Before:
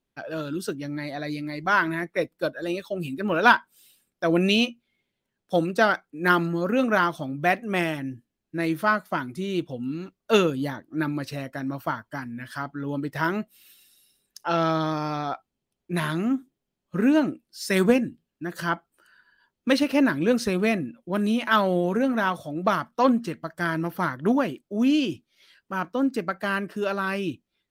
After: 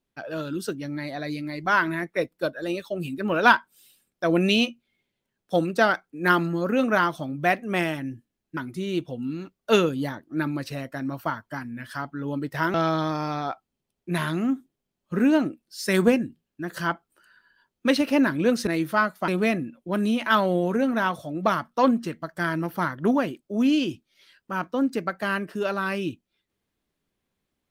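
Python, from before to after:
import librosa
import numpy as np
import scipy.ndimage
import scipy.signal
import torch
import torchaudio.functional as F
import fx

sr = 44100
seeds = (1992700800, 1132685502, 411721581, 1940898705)

y = fx.edit(x, sr, fx.move(start_s=8.57, length_s=0.61, to_s=20.49),
    fx.cut(start_s=13.35, length_s=1.21), tone=tone)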